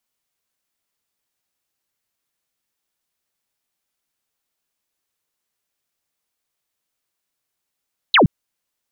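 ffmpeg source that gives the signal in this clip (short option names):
-f lavfi -i "aevalsrc='0.376*clip(t/0.002,0,1)*clip((0.12-t)/0.002,0,1)*sin(2*PI*4300*0.12/log(120/4300)*(exp(log(120/4300)*t/0.12)-1))':d=0.12:s=44100"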